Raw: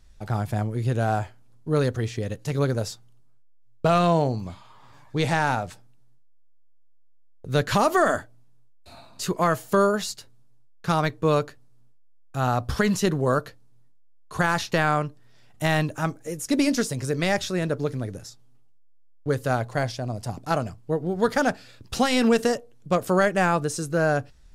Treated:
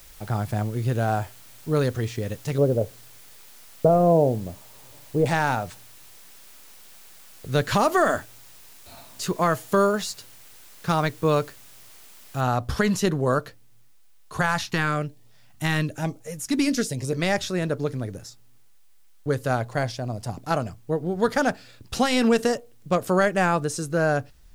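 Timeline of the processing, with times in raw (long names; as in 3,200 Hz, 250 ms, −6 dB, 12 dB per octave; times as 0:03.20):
0:02.58–0:05.26: low-pass with resonance 560 Hz, resonance Q 2.1
0:12.41: noise floor change −50 dB −68 dB
0:14.40–0:17.17: auto-filter notch saw up 1.1 Hz 280–1,800 Hz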